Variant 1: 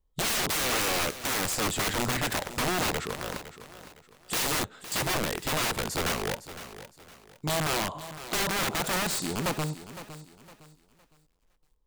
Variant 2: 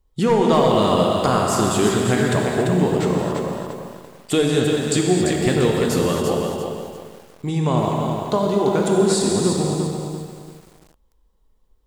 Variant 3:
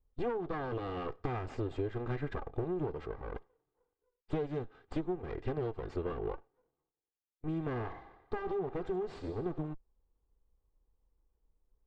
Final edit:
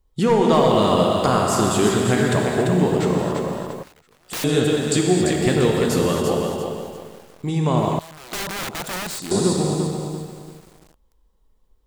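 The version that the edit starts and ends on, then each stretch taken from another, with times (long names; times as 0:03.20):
2
0:03.83–0:04.44: punch in from 1
0:07.99–0:09.31: punch in from 1
not used: 3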